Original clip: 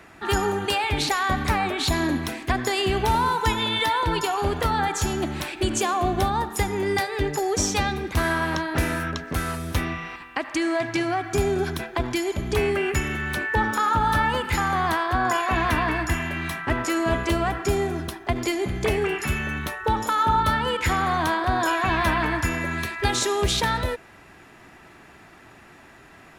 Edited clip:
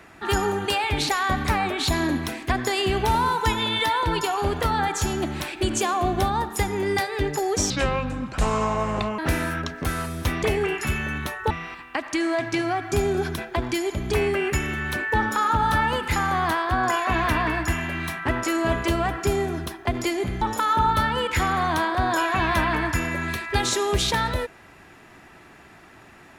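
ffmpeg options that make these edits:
-filter_complex "[0:a]asplit=6[a][b][c][d][e][f];[a]atrim=end=7.704[g];[b]atrim=start=7.7:end=8.68,asetpts=PTS-STARTPTS,asetrate=29106,aresample=44100[h];[c]atrim=start=8.676:end=9.922[i];[d]atrim=start=18.828:end=19.912[j];[e]atrim=start=9.918:end=18.832[k];[f]atrim=start=19.908[l];[g][h]acrossfade=d=0.004:c1=hsin:c2=hsin[m];[m][i]acrossfade=d=0.004:c1=hsin:c2=hsin[n];[n][j]acrossfade=d=0.004:c1=hsin:c2=hsin[o];[o][k]acrossfade=d=0.004:c1=hsin:c2=hsin[p];[p][l]acrossfade=d=0.004:c1=hsin:c2=hsin"

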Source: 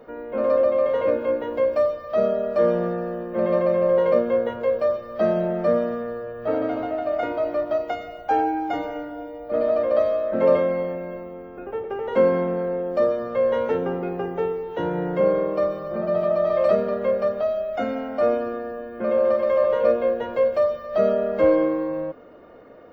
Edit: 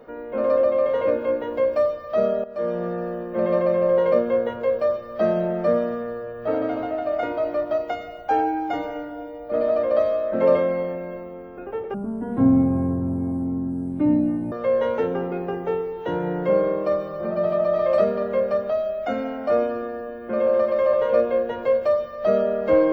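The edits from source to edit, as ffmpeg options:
-filter_complex "[0:a]asplit=4[a][b][c][d];[a]atrim=end=2.44,asetpts=PTS-STARTPTS,afade=t=out:st=2.436:d=0.004:c=hsin:silence=0.199526[e];[b]atrim=start=2.44:end=11.944,asetpts=PTS-STARTPTS,afade=t=in:d=0.6:silence=0.199526[f];[c]atrim=start=11.94:end=13.23,asetpts=PTS-STARTPTS,asetrate=22050,aresample=44100[g];[d]atrim=start=13.226[h];[e][f]concat=n=2:v=0:a=1[i];[i][g]acrossfade=d=0.004:c1=hsin:c2=hsin[j];[j][h]acrossfade=d=0.004:c1=hsin:c2=hsin"

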